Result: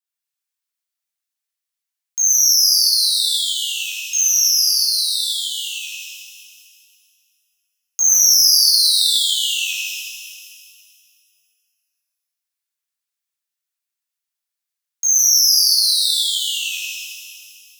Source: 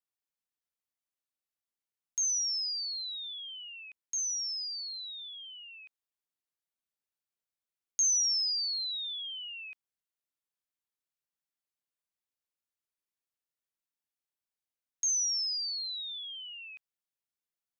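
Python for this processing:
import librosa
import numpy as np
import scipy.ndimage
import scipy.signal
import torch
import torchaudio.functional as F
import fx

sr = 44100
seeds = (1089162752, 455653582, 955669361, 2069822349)

y = fx.tilt_shelf(x, sr, db=-9.5, hz=830.0)
y = fx.leveller(y, sr, passes=2)
y = fx.rev_shimmer(y, sr, seeds[0], rt60_s=2.1, semitones=12, shimmer_db=-8, drr_db=-6.0)
y = y * librosa.db_to_amplitude(-3.0)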